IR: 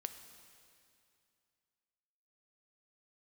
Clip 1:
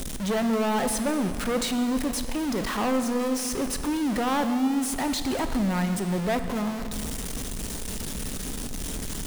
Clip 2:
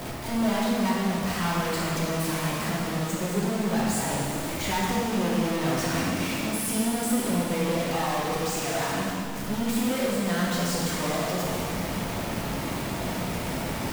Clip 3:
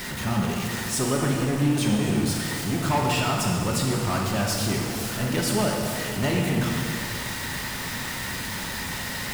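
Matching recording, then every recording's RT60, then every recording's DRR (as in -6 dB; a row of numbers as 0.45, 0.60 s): 1; 2.5, 2.5, 2.5 s; 7.5, -6.0, -1.5 dB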